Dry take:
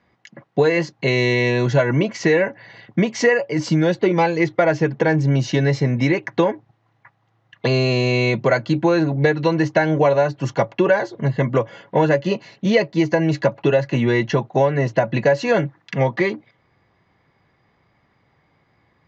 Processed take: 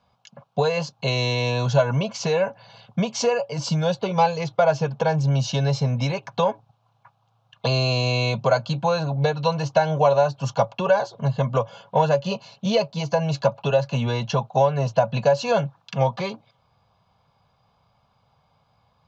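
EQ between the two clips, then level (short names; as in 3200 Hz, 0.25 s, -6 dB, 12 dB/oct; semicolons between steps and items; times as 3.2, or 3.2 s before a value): bell 2800 Hz +5.5 dB 2.1 oct; fixed phaser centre 800 Hz, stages 4; 0.0 dB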